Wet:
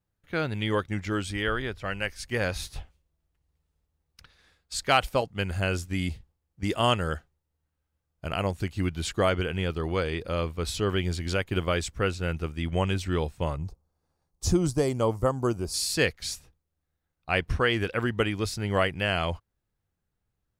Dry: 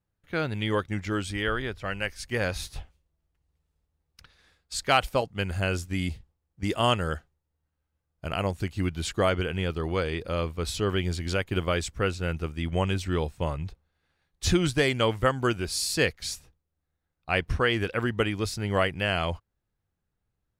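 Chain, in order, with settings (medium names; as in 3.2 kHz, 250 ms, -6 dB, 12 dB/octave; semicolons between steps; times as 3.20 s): 13.56–15.74 s: high-order bell 2.4 kHz -15 dB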